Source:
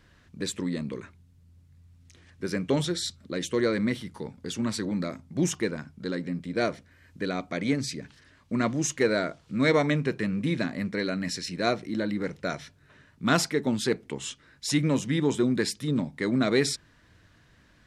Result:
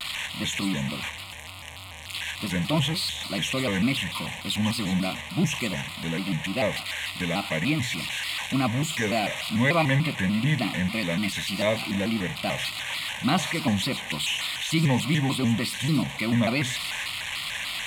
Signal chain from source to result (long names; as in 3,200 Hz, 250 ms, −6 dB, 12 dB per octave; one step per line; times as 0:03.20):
spike at every zero crossing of −15.5 dBFS
low-pass filter 4,100 Hz 12 dB per octave
notch filter 780 Hz, Q 12
in parallel at −1 dB: brickwall limiter −17.5 dBFS, peak gain reduction 9 dB
on the sum: phaser with its sweep stopped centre 1,500 Hz, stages 6
on a send: delay with a high-pass on its return 144 ms, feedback 54%, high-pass 1,500 Hz, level −7.5 dB
on the sum: pitch modulation by a square or saw wave square 3.4 Hz, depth 160 cents
level +1.5 dB